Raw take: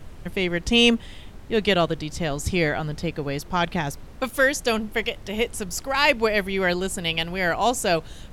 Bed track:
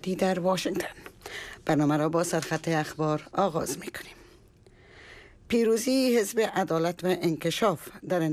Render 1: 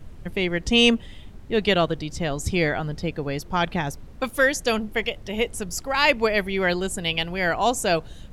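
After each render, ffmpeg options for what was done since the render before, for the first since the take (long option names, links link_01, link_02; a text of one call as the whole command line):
ffmpeg -i in.wav -af "afftdn=noise_reduction=6:noise_floor=-42" out.wav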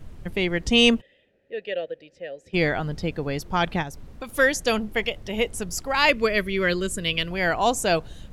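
ffmpeg -i in.wav -filter_complex "[0:a]asplit=3[link_01][link_02][link_03];[link_01]afade=type=out:start_time=1:duration=0.02[link_04];[link_02]asplit=3[link_05][link_06][link_07];[link_05]bandpass=frequency=530:width_type=q:width=8,volume=0dB[link_08];[link_06]bandpass=frequency=1840:width_type=q:width=8,volume=-6dB[link_09];[link_07]bandpass=frequency=2480:width_type=q:width=8,volume=-9dB[link_10];[link_08][link_09][link_10]amix=inputs=3:normalize=0,afade=type=in:start_time=1:duration=0.02,afade=type=out:start_time=2.53:duration=0.02[link_11];[link_03]afade=type=in:start_time=2.53:duration=0.02[link_12];[link_04][link_11][link_12]amix=inputs=3:normalize=0,asplit=3[link_13][link_14][link_15];[link_13]afade=type=out:start_time=3.82:duration=0.02[link_16];[link_14]acompressor=threshold=-34dB:ratio=2.5:attack=3.2:release=140:knee=1:detection=peak,afade=type=in:start_time=3.82:duration=0.02,afade=type=out:start_time=4.28:duration=0.02[link_17];[link_15]afade=type=in:start_time=4.28:duration=0.02[link_18];[link_16][link_17][link_18]amix=inputs=3:normalize=0,asettb=1/sr,asplit=3[link_19][link_20][link_21];[link_19]atrim=end=6.094[link_22];[link_20]atrim=start=6.09:end=7.31,asetpts=PTS-STARTPTS,afade=type=in:duration=0.004:curve=qsin,afade=type=out:start_time=1.216:duration=0.004:curve=qsin,asuperstop=centerf=800:order=4:qfactor=2[link_23];[link_21]atrim=start=7.306[link_24];[link_22][link_23]acrossfade=duration=0.004:curve1=hsin:curve2=qsin[link_25];[link_25][link_24]acrossfade=duration=0.004:curve1=qsin:curve2=hsin" out.wav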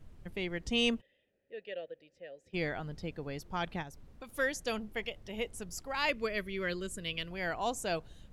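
ffmpeg -i in.wav -af "volume=-12.5dB" out.wav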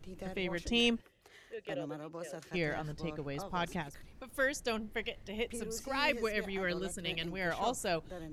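ffmpeg -i in.wav -i bed.wav -filter_complex "[1:a]volume=-19.5dB[link_01];[0:a][link_01]amix=inputs=2:normalize=0" out.wav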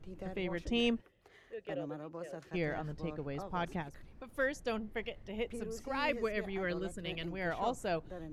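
ffmpeg -i in.wav -af "highshelf=frequency=3000:gain=-11.5" out.wav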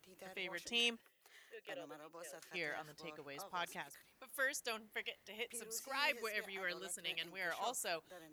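ffmpeg -i in.wav -af "highpass=frequency=1500:poles=1,aemphasis=mode=production:type=50fm" out.wav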